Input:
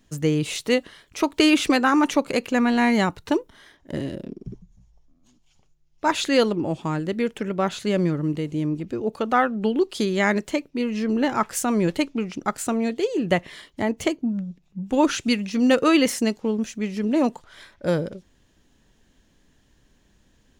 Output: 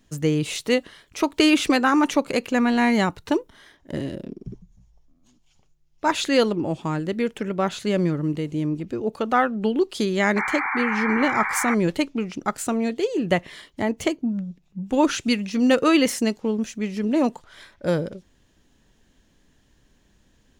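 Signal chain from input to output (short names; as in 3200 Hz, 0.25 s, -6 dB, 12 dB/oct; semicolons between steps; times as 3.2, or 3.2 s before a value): painted sound noise, 10.36–11.75, 750–2400 Hz -26 dBFS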